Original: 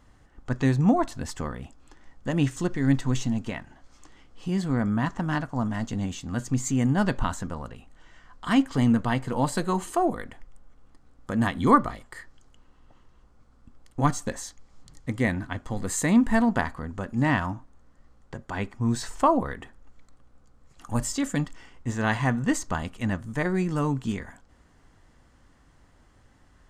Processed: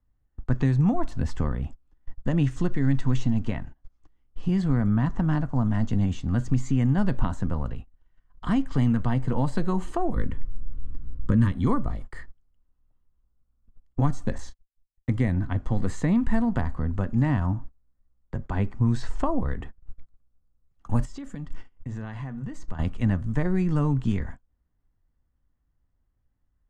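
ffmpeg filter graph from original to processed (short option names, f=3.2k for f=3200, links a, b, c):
-filter_complex "[0:a]asettb=1/sr,asplit=3[a][b][c];[a]atrim=end=10.164[d];[b]atrim=start=10.16:end=11.52,asetpts=PTS-STARTPTS,afade=t=in:d=0.004:c=qsin,afade=t=out:st=1.356:d=0.004:c=qsin,asuperstop=centerf=730:order=8:qfactor=2.6,lowshelf=f=320:g=11.5[e];[c]atrim=start=11.516[f];[d][e]acrossfade=d=0.004:c1=hsin:c2=qsin[g];[g][f]acrossfade=d=0.004:c1=qsin:c2=hsin,asettb=1/sr,asplit=3[h][i][j];[h]atrim=end=14.384[k];[i]atrim=start=14.38:end=15.09,asetpts=PTS-STARTPTS,afade=t=in:d=0.004:c=qsin,afade=t=out:st=0.706:d=0.004:c=qsin,agate=range=-35dB:threshold=-42dB:ratio=16:release=100:detection=peak,asplit=2[l][m];[m]adelay=29,volume=-11dB[n];[l][n]amix=inputs=2:normalize=0,atrim=end_sample=31311[o];[j]atrim=start=15.086[p];[k][o]acrossfade=d=0.004:c1=hsin:c2=qsin[q];[q][p]acrossfade=d=0.004:c1=qsin:c2=hsin,asettb=1/sr,asplit=3[r][s][t];[r]atrim=end=21.054[u];[s]atrim=start=21.05:end=22.79,asetpts=PTS-STARTPTS,afade=t=in:d=0.004:c=qsin,afade=t=out:st=1.736:d=0.004:c=qsin,bandreject=f=60:t=h:w=6,bandreject=f=120:t=h:w=6,bandreject=f=180:t=h:w=6,acompressor=threshold=-37dB:ratio=10:attack=3.2:release=140:knee=1:detection=peak[v];[t]atrim=start=22.786[w];[u][v]acrossfade=d=0.004:c1=hsin:c2=qsin[x];[x][w]acrossfade=d=0.004:c1=qsin:c2=hsin,agate=range=-26dB:threshold=-44dB:ratio=16:detection=peak,acrossover=split=120|920|5900[y][z][aa][ab];[y]acompressor=threshold=-36dB:ratio=4[ac];[z]acompressor=threshold=-28dB:ratio=4[ad];[aa]acompressor=threshold=-37dB:ratio=4[ae];[ab]acompressor=threshold=-44dB:ratio=4[af];[ac][ad][ae][af]amix=inputs=4:normalize=0,aemphasis=mode=reproduction:type=bsi"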